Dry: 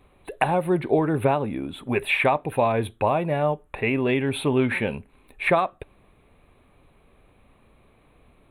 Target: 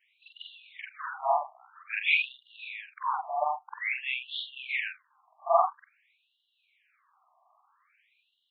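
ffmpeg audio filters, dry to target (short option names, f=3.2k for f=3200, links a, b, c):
-af "afftfilt=real='re':imag='-im':win_size=4096:overlap=0.75,bandreject=f=60:t=h:w=6,bandreject=f=120:t=h:w=6,bandreject=f=180:t=h:w=6,afftfilt=real='re*between(b*sr/1024,850*pow(4000/850,0.5+0.5*sin(2*PI*0.5*pts/sr))/1.41,850*pow(4000/850,0.5+0.5*sin(2*PI*0.5*pts/sr))*1.41)':imag='im*between(b*sr/1024,850*pow(4000/850,0.5+0.5*sin(2*PI*0.5*pts/sr))/1.41,850*pow(4000/850,0.5+0.5*sin(2*PI*0.5*pts/sr))*1.41)':win_size=1024:overlap=0.75,volume=4.5dB"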